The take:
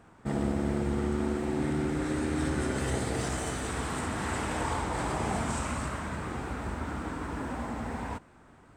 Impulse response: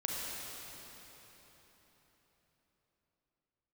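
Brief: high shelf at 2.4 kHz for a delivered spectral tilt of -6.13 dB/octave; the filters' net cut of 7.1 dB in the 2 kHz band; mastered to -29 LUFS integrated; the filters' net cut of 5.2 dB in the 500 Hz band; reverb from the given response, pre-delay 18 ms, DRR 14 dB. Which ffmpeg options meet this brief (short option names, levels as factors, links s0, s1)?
-filter_complex "[0:a]equalizer=f=500:t=o:g=-7,equalizer=f=2000:t=o:g=-6,highshelf=f=2400:g=-6.5,asplit=2[s0][s1];[1:a]atrim=start_sample=2205,adelay=18[s2];[s1][s2]afir=irnorm=-1:irlink=0,volume=0.119[s3];[s0][s3]amix=inputs=2:normalize=0,volume=1.88"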